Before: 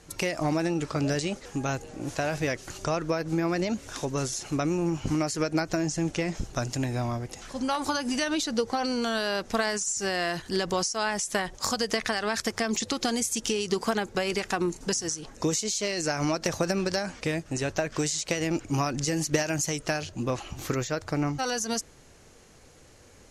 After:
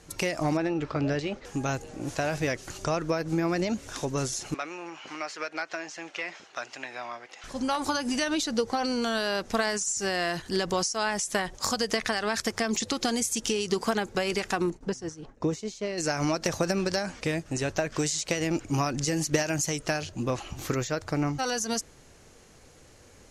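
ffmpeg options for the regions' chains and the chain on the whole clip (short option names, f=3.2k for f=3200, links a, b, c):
-filter_complex "[0:a]asettb=1/sr,asplit=3[a][b][c];[a]atrim=end=0.574[d];[b]atrim=start=0.57:end=1.45,asetpts=PTS-STARTPTS,afade=t=in:d=0.004:c=qsin,afade=t=out:st=0.876:d=0.004:c=qsin,lowpass=3.3k,equalizer=f=180:t=o:w=0.28:g=-7[e];[c]atrim=start=1.446[f];[d][e]acrossfade=d=0.004:c1=hsin:c2=qsin[g];[g][f]acrossfade=d=0.004:c1=qsin:c2=hsin,asettb=1/sr,asplit=3[h][i][j];[h]atrim=end=4.544[k];[i]atrim=start=4.54:end=7.44,asetpts=PTS-STARTPTS,afade=t=in:d=0.004:c=qsin,afade=t=out:st=2.896:d=0.004:c=qsin,tiltshelf=f=1.1k:g=-9.5,volume=20.5dB,asoftclip=hard,volume=-20.5dB,highpass=460,lowpass=2.4k[l];[j]atrim=start=7.436[m];[k][l]acrossfade=d=0.004:c1=hsin:c2=qsin[n];[n][m]acrossfade=d=0.004:c1=qsin:c2=hsin,asettb=1/sr,asplit=3[o][p][q];[o]atrim=end=14.704[r];[p]atrim=start=14.7:end=15.98,asetpts=PTS-STARTPTS,afade=t=in:d=0.004:c=qsin,afade=t=out:st=1.276:d=0.004:c=qsin,lowpass=f=1.1k:p=1,agate=range=-33dB:threshold=-42dB:ratio=3:release=100:detection=peak[s];[q]atrim=start=15.976[t];[r][s]acrossfade=d=0.004:c1=hsin:c2=qsin[u];[u][t]acrossfade=d=0.004:c1=qsin:c2=hsin"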